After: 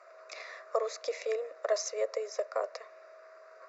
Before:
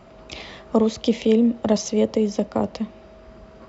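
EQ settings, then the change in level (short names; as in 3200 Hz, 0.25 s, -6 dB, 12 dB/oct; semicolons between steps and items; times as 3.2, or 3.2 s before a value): inverse Chebyshev high-pass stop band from 180 Hz, stop band 60 dB; air absorption 51 m; fixed phaser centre 850 Hz, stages 6; 0.0 dB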